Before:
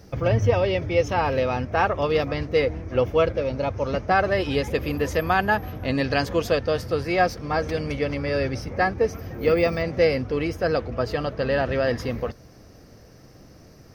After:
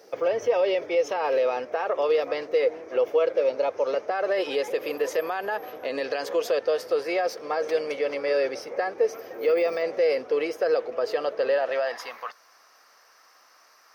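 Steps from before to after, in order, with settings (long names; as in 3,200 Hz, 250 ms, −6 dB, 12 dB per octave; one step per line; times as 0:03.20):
low-shelf EQ 280 Hz −8.5 dB
brickwall limiter −19 dBFS, peak gain reduction 10.5 dB
high-pass filter sweep 460 Hz → 1,100 Hz, 0:11.47–0:12.24
level −1 dB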